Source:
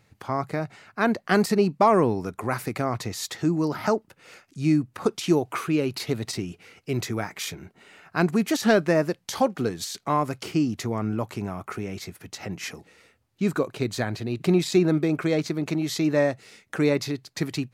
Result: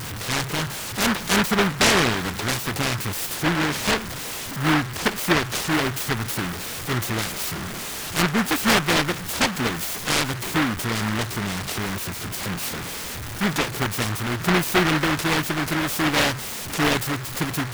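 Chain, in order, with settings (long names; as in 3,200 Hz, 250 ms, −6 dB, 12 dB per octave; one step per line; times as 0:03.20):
converter with a step at zero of −25 dBFS
short delay modulated by noise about 1,300 Hz, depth 0.42 ms
level −1 dB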